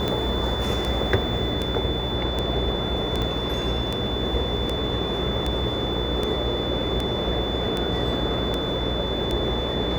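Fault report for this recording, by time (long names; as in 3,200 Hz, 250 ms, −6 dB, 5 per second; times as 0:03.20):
mains buzz 60 Hz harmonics 18 −30 dBFS
scratch tick 78 rpm −12 dBFS
whistle 3,500 Hz −30 dBFS
0:03.22: click −15 dBFS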